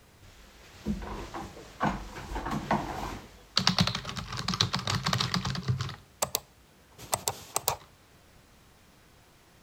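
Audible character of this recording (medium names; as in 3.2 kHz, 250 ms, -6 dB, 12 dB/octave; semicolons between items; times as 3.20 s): noise floor -59 dBFS; spectral tilt -4.0 dB/octave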